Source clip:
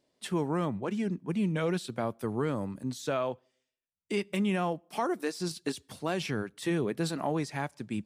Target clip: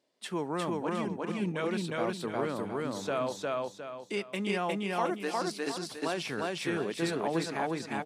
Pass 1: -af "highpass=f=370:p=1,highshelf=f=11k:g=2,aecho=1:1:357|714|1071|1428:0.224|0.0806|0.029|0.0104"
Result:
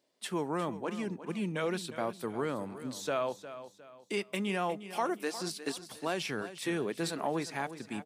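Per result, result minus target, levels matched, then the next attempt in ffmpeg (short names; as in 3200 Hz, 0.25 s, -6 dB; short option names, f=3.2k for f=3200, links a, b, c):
echo-to-direct -12 dB; 8000 Hz band +2.5 dB
-af "highpass=f=370:p=1,highshelf=f=11k:g=2,aecho=1:1:357|714|1071|1428|1785:0.891|0.321|0.116|0.0416|0.015"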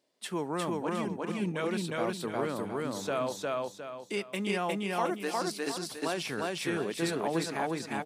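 8000 Hz band +3.0 dB
-af "highpass=f=370:p=1,highshelf=f=11k:g=-9.5,aecho=1:1:357|714|1071|1428|1785:0.891|0.321|0.116|0.0416|0.015"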